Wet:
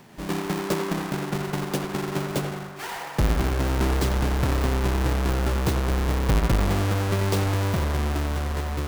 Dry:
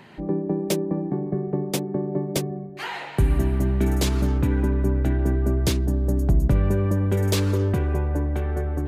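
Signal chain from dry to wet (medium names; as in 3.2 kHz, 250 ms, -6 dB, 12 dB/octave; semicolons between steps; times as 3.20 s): square wave that keeps the level; band-passed feedback delay 90 ms, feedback 74%, band-pass 1.2 kHz, level -4 dB; trim -6.5 dB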